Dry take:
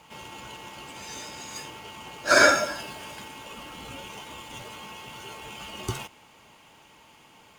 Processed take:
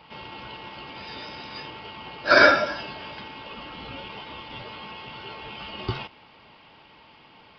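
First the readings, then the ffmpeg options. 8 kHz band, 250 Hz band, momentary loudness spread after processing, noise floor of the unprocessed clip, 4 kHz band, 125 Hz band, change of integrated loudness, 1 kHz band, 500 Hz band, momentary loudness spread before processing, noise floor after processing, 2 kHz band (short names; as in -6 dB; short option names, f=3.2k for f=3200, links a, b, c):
-17.5 dB, +2.5 dB, 22 LU, -55 dBFS, +1.0 dB, +2.5 dB, +2.0 dB, +2.5 dB, +2.5 dB, 22 LU, -53 dBFS, +2.5 dB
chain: -af "aresample=11025,aresample=44100,volume=2.5dB"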